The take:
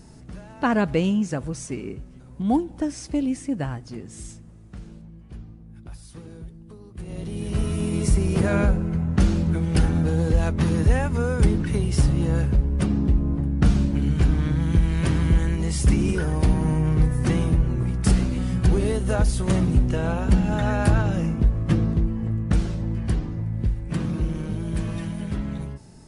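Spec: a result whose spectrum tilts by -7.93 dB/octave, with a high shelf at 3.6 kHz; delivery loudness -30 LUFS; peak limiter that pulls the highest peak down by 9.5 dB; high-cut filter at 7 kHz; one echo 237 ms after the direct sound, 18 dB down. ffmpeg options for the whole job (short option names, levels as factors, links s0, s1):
-af "lowpass=7000,highshelf=f=3600:g=-6.5,alimiter=limit=0.141:level=0:latency=1,aecho=1:1:237:0.126,volume=0.668"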